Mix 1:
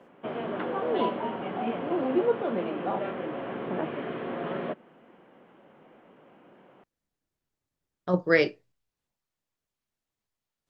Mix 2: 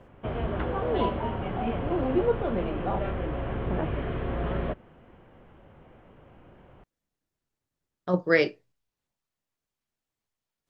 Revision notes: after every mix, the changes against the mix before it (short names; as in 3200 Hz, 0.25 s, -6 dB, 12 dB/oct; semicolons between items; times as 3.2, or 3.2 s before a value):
background: remove HPF 190 Hz 24 dB/oct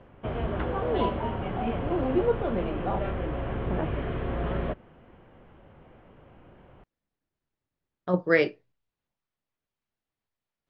speech: add LPF 3700 Hz 12 dB/oct